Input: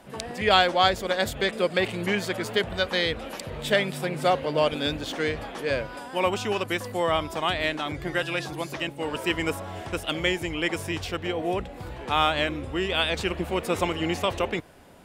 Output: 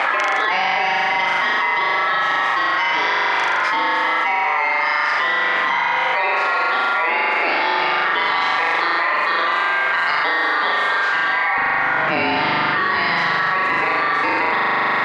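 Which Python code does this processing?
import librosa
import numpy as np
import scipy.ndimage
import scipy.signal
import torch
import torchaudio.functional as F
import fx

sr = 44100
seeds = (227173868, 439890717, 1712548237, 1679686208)

y = x * np.sin(2.0 * np.pi * 1500.0 * np.arange(len(x)) / sr)
y = fx.bandpass_edges(y, sr, low_hz=fx.steps((0.0, 470.0), (11.58, 140.0)), high_hz=2400.0)
y = fx.room_flutter(y, sr, wall_m=7.0, rt60_s=1.5)
y = fx.room_shoebox(y, sr, seeds[0], volume_m3=3200.0, walls='furnished', distance_m=0.51)
y = fx.env_flatten(y, sr, amount_pct=100)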